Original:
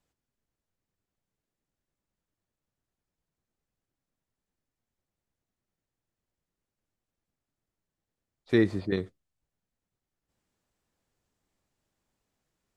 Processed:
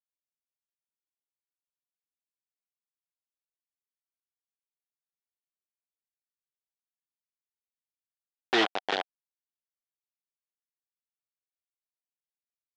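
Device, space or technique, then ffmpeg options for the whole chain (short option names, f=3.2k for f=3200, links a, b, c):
hand-held game console: -af "acrusher=bits=3:mix=0:aa=0.000001,highpass=470,equalizer=f=750:t=q:w=4:g=8,equalizer=f=1.5k:t=q:w=4:g=5,equalizer=f=3.2k:t=q:w=4:g=7,lowpass=f=4.9k:w=0.5412,lowpass=f=4.9k:w=1.3066"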